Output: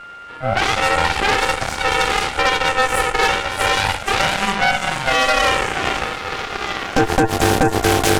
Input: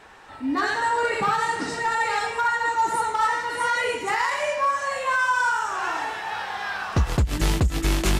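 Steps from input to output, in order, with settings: ring modulator 390 Hz; whine 1400 Hz -39 dBFS; added harmonics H 6 -7 dB, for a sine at -11 dBFS; gain +4.5 dB

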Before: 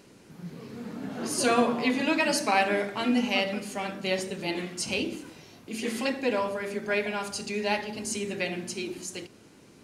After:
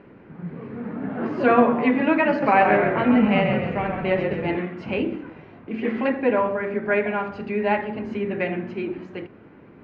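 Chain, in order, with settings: LPF 2100 Hz 24 dB/oct; 2.29–4.57 frequency-shifting echo 0.132 s, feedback 52%, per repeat -36 Hz, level -5.5 dB; gain +7 dB

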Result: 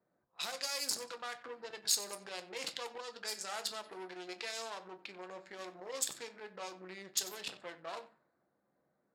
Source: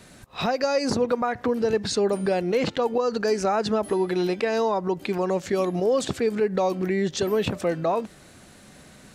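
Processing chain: Wiener smoothing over 15 samples; high shelf 2900 Hz +8.5 dB; notch 6000 Hz, Q 8.2; shoebox room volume 140 m³, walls furnished, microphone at 0.74 m; added harmonics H 4 -20 dB, 8 -30 dB, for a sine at -9.5 dBFS; differentiator; thinning echo 93 ms, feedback 34%, high-pass 720 Hz, level -16 dB; low-pass opened by the level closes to 620 Hz, open at -32.5 dBFS; gain -2.5 dB

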